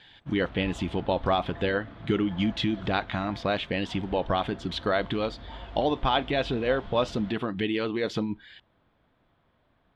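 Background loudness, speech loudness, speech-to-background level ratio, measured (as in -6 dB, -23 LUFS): -45.0 LUFS, -28.5 LUFS, 16.5 dB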